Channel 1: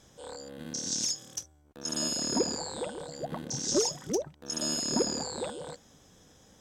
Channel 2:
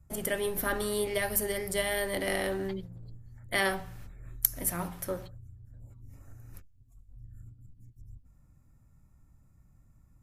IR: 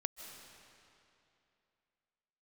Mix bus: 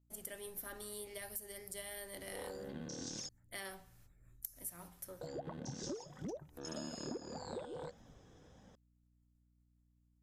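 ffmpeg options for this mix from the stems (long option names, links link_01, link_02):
-filter_complex "[0:a]lowpass=frequency=1600:poles=1,flanger=delay=1:depth=1.8:regen=-54:speed=1.7:shape=triangular,adelay=2150,volume=2.5dB,asplit=3[link_01][link_02][link_03];[link_01]atrim=end=3.29,asetpts=PTS-STARTPTS,afade=type=out:start_time=3.286:duration=0.004:curve=hsin[link_04];[link_02]atrim=start=3.29:end=5.21,asetpts=PTS-STARTPTS,volume=0[link_05];[link_03]atrim=start=5.21,asetpts=PTS-STARTPTS,afade=type=in:duration=0.004:curve=hsin[link_06];[link_04][link_05][link_06]concat=n=3:v=0:a=1[link_07];[1:a]bass=frequency=250:gain=-2,treble=frequency=4000:gain=9,agate=range=-33dB:threshold=-53dB:ratio=3:detection=peak,asoftclip=type=tanh:threshold=-7dB,volume=-17.5dB[link_08];[link_07][link_08]amix=inputs=2:normalize=0,aeval=exprs='val(0)+0.000251*(sin(2*PI*60*n/s)+sin(2*PI*2*60*n/s)/2+sin(2*PI*3*60*n/s)/3+sin(2*PI*4*60*n/s)/4+sin(2*PI*5*60*n/s)/5)':channel_layout=same,acompressor=threshold=-40dB:ratio=16"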